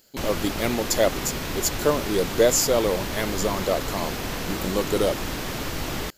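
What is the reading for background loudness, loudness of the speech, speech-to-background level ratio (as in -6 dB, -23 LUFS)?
-30.0 LUFS, -24.5 LUFS, 5.5 dB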